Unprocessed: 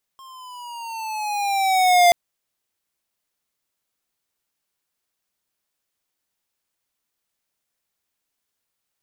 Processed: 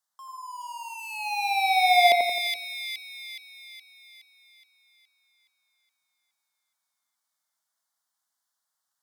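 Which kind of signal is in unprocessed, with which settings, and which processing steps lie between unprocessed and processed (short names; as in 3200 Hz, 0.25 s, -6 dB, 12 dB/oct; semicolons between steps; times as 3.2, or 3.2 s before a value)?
gliding synth tone square, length 1.93 s, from 1070 Hz, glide -7.5 st, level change +31 dB, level -12 dB
weighting filter A; envelope phaser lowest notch 430 Hz, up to 1300 Hz, full sweep at -22.5 dBFS; split-band echo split 2100 Hz, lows 87 ms, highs 0.419 s, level -4 dB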